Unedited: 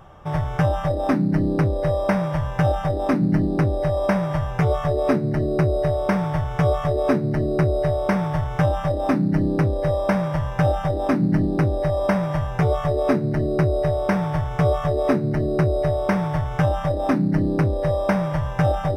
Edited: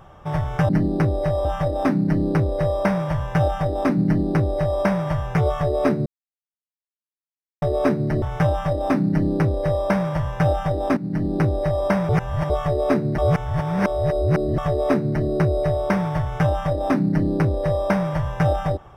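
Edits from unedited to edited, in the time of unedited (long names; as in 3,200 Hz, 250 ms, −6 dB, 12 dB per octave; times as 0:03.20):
0:03.28–0:04.04: duplicate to 0:00.69
0:05.30–0:06.86: silence
0:07.46–0:08.41: remove
0:11.16–0:11.57: fade in, from −13 dB
0:12.28–0:12.69: reverse
0:13.37–0:14.77: reverse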